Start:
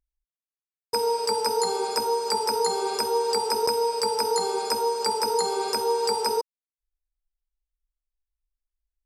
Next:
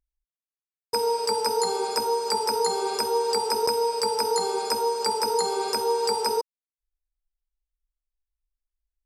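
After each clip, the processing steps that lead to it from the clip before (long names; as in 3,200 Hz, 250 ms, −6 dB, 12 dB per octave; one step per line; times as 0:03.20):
no processing that can be heard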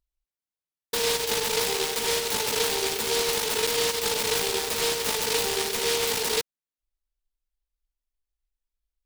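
brickwall limiter −16.5 dBFS, peak gain reduction 5 dB
short delay modulated by noise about 3,600 Hz, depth 0.26 ms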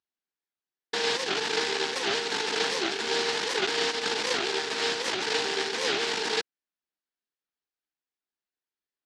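in parallel at −6.5 dB: decimation without filtering 35×
on the sum: loudspeaker in its box 320–6,200 Hz, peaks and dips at 560 Hz −10 dB, 1,600 Hz +5 dB, 6,100 Hz −3 dB
wow of a warped record 78 rpm, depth 250 cents
level −1 dB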